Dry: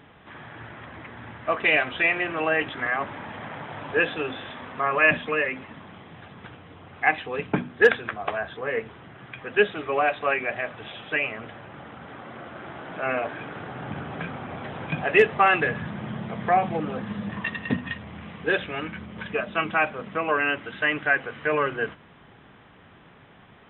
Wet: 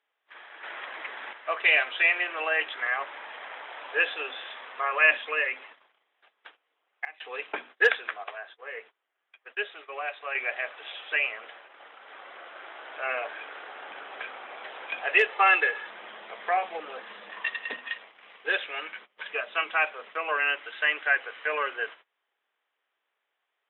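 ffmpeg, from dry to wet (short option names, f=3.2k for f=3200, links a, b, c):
-filter_complex "[0:a]asettb=1/sr,asplit=3[a][b][c];[a]atrim=end=15.324[d];[b]atrim=start=15.32:end=15.88,asetpts=PTS-STARTPTS,afade=t=in:d=0.004:c=qsin,afade=t=out:st=0.556:d=0.004:c=qsin,aecho=1:1:2.3:0.55,atrim=end_sample=24696[e];[c]atrim=start=15.876[f];[d][e]acrossfade=d=0.004:c1=hsin:c2=qsin[g];[g][f]acrossfade=d=0.004:c1=qsin:c2=hsin,asplit=7[h][i][j][k][l][m][n];[h]atrim=end=0.632[o];[i]atrim=start=0.628:end=1.332,asetpts=PTS-STARTPTS,volume=7dB[p];[j]atrim=start=1.328:end=7.05,asetpts=PTS-STARTPTS,afade=t=out:st=5.362:d=0.36:c=log:silence=0.0841395[q];[k]atrim=start=7.05:end=7.2,asetpts=PTS-STARTPTS,volume=-21.5dB[r];[l]atrim=start=7.2:end=8.242,asetpts=PTS-STARTPTS,afade=t=in:d=0.36:c=log:silence=0.0841395[s];[m]atrim=start=8.238:end=10.352,asetpts=PTS-STARTPTS,volume=-7dB[t];[n]atrim=start=10.348[u];[o][p]acrossfade=d=0.004:c1=hsin:c2=hsin[v];[q][r][s]concat=n=3:v=0:a=1[w];[v][w]acrossfade=d=0.004:c1=hsin:c2=hsin[x];[x][t]acrossfade=d=0.004:c1=hsin:c2=hsin[y];[y][u]acrossfade=d=0.004:c1=hsin:c2=hsin,highpass=f=430:w=0.5412,highpass=f=430:w=1.3066,agate=range=-24dB:threshold=-44dB:ratio=16:detection=peak,equalizer=f=3.1k:w=0.46:g=8.5,volume=-7.5dB"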